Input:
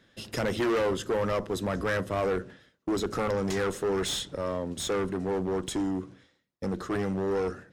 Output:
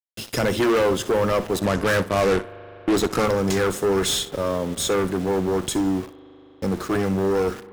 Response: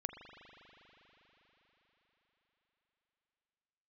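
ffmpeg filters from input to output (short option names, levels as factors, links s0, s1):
-filter_complex "[0:a]highshelf=f=11000:g=9,bandreject=f=1900:w=20,aeval=exprs='val(0)*gte(abs(val(0)),0.00841)':c=same,asettb=1/sr,asplit=3[s0][s1][s2];[s0]atrim=end=1.554[s3];[s1]atrim=start=1.55:end=3.26,asetpts=PTS-STARTPTS,afade=t=in:d=0.004:c=qsin,afade=t=out:st=1.706:d=0.004:c=qsin,aeval=exprs='0.1*(cos(1*acos(clip(val(0)/0.1,-1,1)))-cos(1*PI/2))+0.00355*(cos(3*acos(clip(val(0)/0.1,-1,1)))-cos(3*PI/2))+0.0178*(cos(5*acos(clip(val(0)/0.1,-1,1)))-cos(5*PI/2))+0.0251*(cos(7*acos(clip(val(0)/0.1,-1,1)))-cos(7*PI/2))':c=same[s4];[s2]atrim=start=3.256[s5];[s3][s4]acrossfade=d=0.004:c1=hsin:c2=qsin[s6];[s6][s5]acrossfade=d=0.004:c1=qsin:c2=hsin,asplit=2[s7][s8];[1:a]atrim=start_sample=2205,adelay=62[s9];[s8][s9]afir=irnorm=-1:irlink=0,volume=0.211[s10];[s7][s10]amix=inputs=2:normalize=0,volume=2.24"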